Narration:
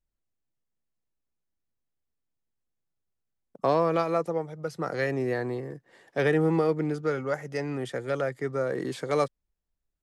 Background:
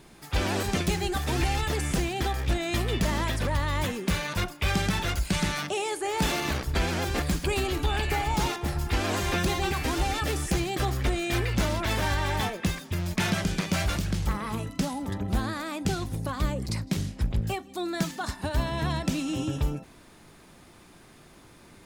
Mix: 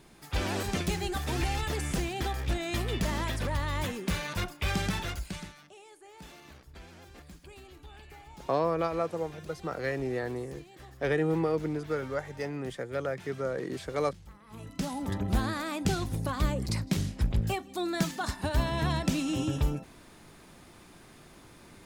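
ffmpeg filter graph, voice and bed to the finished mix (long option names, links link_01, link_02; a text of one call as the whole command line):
ffmpeg -i stem1.wav -i stem2.wav -filter_complex "[0:a]adelay=4850,volume=-4dB[link_01];[1:a]volume=18.5dB,afade=type=out:start_time=4.89:duration=0.65:silence=0.112202,afade=type=in:start_time=14.47:duration=0.62:silence=0.0749894[link_02];[link_01][link_02]amix=inputs=2:normalize=0" out.wav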